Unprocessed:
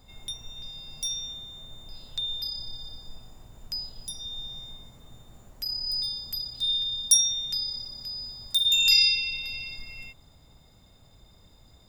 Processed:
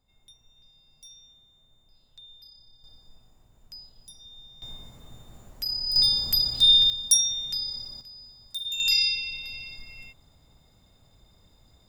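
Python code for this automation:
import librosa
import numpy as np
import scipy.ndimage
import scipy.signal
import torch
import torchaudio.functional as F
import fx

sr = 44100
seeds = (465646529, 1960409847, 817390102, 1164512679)

y = fx.gain(x, sr, db=fx.steps((0.0, -18.0), (2.84, -11.0), (4.62, 2.0), (5.96, 10.0), (6.9, -0.5), (8.01, -10.0), (8.8, -3.0)))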